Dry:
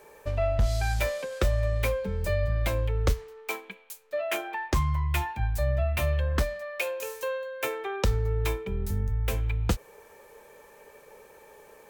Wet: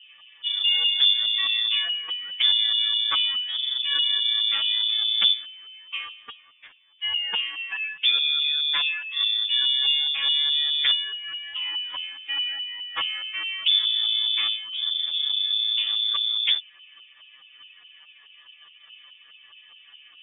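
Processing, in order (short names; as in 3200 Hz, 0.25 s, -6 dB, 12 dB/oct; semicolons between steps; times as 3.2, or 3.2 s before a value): in parallel at -6 dB: decimation with a swept rate 17×, swing 60% 1.5 Hz; on the sum: LFO low-pass saw up 8.1 Hz 620–2500 Hz; inverted band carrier 3500 Hz; time stretch by phase-locked vocoder 1.7×; gain -2.5 dB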